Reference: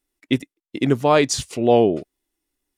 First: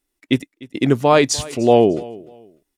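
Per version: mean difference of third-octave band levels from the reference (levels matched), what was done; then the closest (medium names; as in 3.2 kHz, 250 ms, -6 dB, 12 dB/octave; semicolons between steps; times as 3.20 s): 2.0 dB: feedback delay 299 ms, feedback 26%, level -20.5 dB; trim +2.5 dB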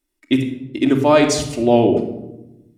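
5.5 dB: simulated room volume 3300 m³, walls furnished, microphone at 2.7 m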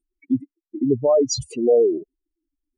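13.0 dB: spectral contrast enhancement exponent 3.8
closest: first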